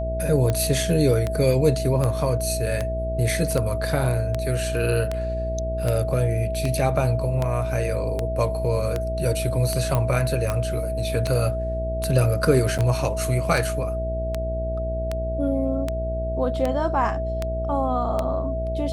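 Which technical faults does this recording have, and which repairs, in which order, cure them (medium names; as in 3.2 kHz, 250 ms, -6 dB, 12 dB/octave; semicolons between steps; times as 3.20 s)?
buzz 60 Hz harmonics 11 -28 dBFS
tick 78 rpm -11 dBFS
whine 650 Hz -27 dBFS
9.95 s: pop -10 dBFS
12.78–12.79 s: dropout 7.8 ms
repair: de-click; de-hum 60 Hz, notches 11; band-stop 650 Hz, Q 30; interpolate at 12.78 s, 7.8 ms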